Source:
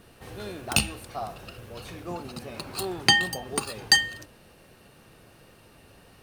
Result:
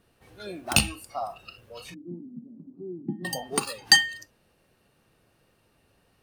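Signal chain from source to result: 1.94–3.25 Butterworth band-pass 230 Hz, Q 1.3; spectral noise reduction 14 dB; gain +2 dB

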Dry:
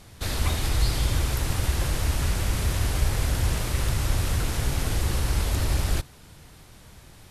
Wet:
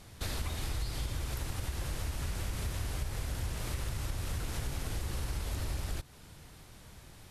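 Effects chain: compressor, threshold -28 dBFS, peak gain reduction 11 dB; gain -4 dB

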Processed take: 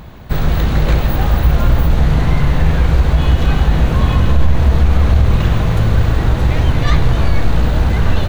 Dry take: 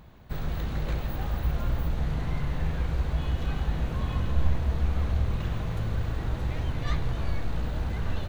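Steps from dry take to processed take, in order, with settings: maximiser +17.5 dB; gain -1 dB

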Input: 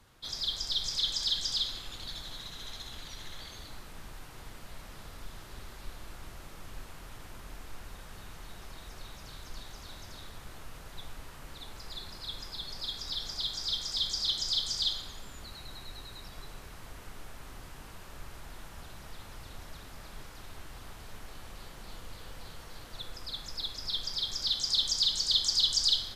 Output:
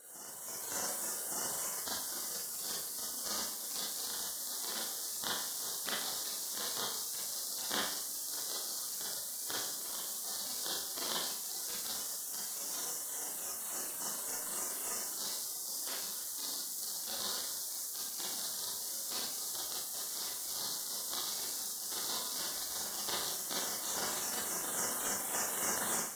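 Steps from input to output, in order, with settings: rattling part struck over -54 dBFS, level -22 dBFS; spectral gate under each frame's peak -30 dB weak; AGC; reverse echo 1.166 s -10.5 dB; Schroeder reverb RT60 0.59 s, combs from 31 ms, DRR -6 dB

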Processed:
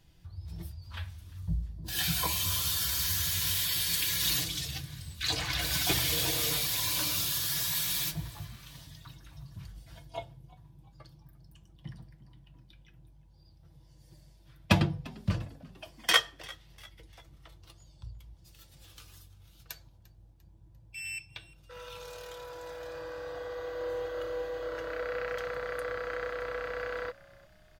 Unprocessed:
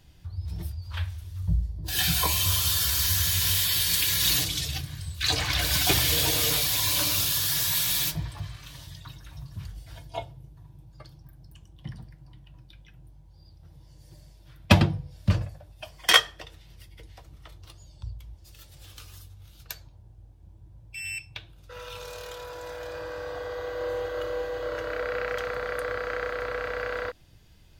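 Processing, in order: comb 6 ms, depth 31%; frequency-shifting echo 0.347 s, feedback 43%, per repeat +63 Hz, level -22 dB; gain -6 dB

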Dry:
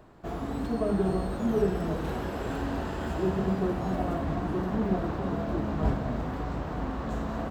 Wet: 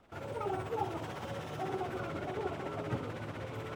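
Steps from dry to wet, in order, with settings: rotary speaker horn 8 Hz; speed mistake 7.5 ips tape played at 15 ips; gain -7.5 dB

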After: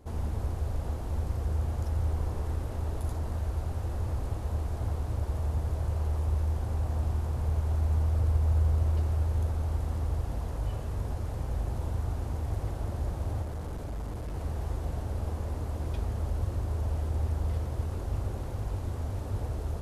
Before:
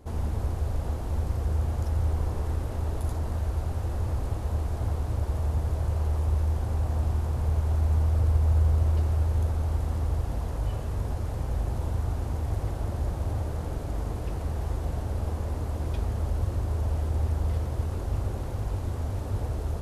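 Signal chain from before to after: 13.42–14.34 hard clip -29 dBFS, distortion -27 dB; gain -3 dB

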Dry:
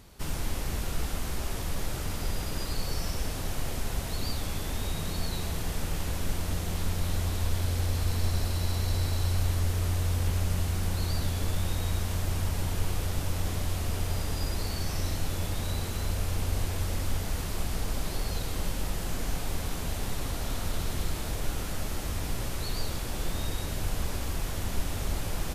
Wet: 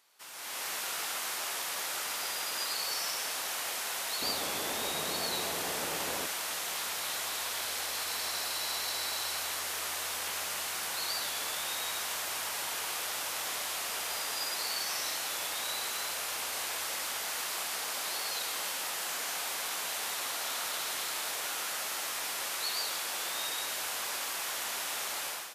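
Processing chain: HPF 940 Hz 12 dB/oct, from 4.22 s 440 Hz, from 6.26 s 950 Hz; AGC gain up to 14 dB; gain -8.5 dB

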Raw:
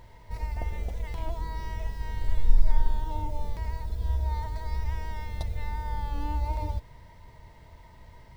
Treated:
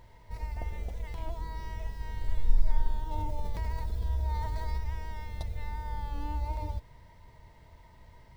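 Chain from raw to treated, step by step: 3.11–4.78 fast leveller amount 50%; gain -4 dB

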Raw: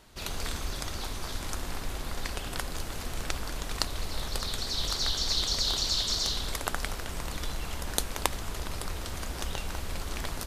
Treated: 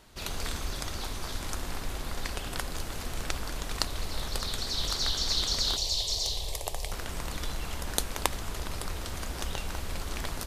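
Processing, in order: 5.76–6.92 fixed phaser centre 590 Hz, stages 4

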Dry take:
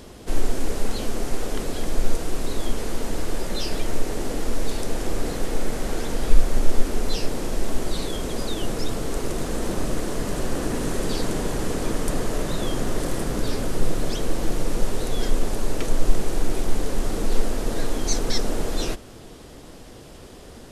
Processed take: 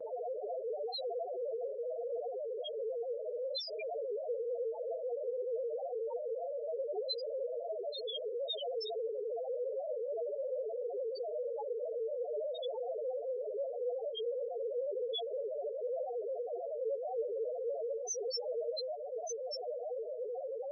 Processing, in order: steep high-pass 460 Hz 36 dB/oct; on a send: thin delay 1.188 s, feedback 65%, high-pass 2300 Hz, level -24 dB; on the sum: compressor 8:1, threshold -40 dBFS, peak gain reduction 16.5 dB; in parallel at -4 dB: fuzz box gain 56 dB, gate -59 dBFS; on the sum: loudest bins only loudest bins 1; gate with hold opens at -33 dBFS; gain -5.5 dB

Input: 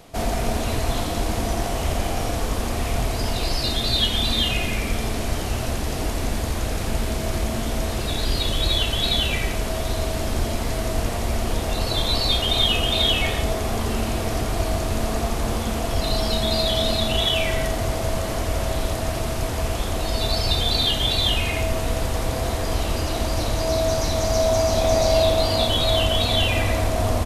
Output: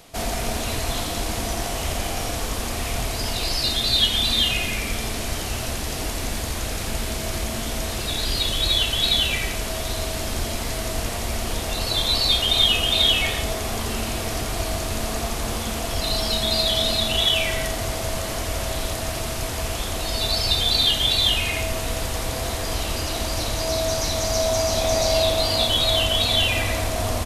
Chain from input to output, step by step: tilt shelf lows -4 dB, about 1500 Hz

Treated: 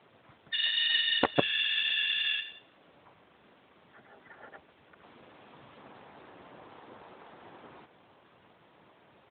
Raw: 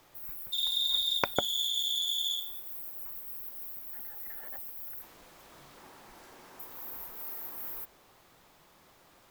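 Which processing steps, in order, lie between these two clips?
harmoniser -12 st -5 dB, -7 st -16 dB, -4 st -1 dB; added harmonics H 2 -24 dB, 4 -24 dB, 6 -36 dB, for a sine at -7.5 dBFS; AMR-NB 12.2 kbps 8000 Hz

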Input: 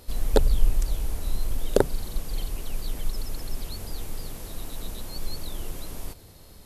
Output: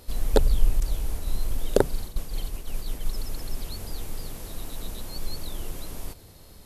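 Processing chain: 0.8–3.07 expander -25 dBFS

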